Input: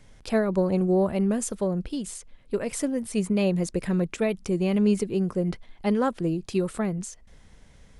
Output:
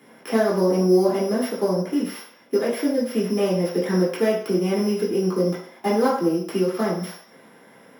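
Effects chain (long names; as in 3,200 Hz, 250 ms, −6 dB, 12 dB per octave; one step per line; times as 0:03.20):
samples sorted by size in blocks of 8 samples
high-pass filter 200 Hz 12 dB per octave
high-shelf EQ 5,100 Hz +7 dB
downward compressor 2 to 1, threshold −34 dBFS, peak gain reduction 9 dB
convolution reverb RT60 0.60 s, pre-delay 3 ms, DRR −7.5 dB
level −5 dB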